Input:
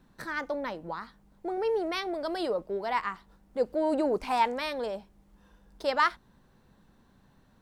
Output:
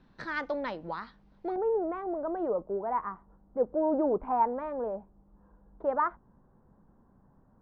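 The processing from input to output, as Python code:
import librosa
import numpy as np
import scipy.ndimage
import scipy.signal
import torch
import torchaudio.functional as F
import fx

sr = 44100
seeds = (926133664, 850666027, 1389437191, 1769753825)

y = fx.lowpass(x, sr, hz=fx.steps((0.0, 4900.0), (1.56, 1200.0)), slope=24)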